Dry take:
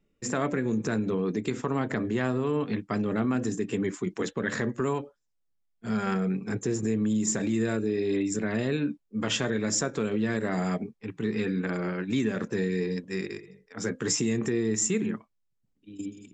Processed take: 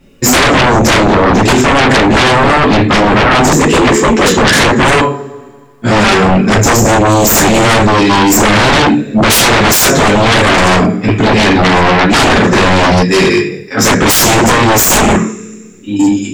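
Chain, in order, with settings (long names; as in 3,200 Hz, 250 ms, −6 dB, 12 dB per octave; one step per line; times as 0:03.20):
coupled-rooms reverb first 0.35 s, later 1.8 s, from −27 dB, DRR −6.5 dB
0:03.49–0:04.31: frequency shifter +45 Hz
sine wavefolder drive 17 dB, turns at −7 dBFS
level +2.5 dB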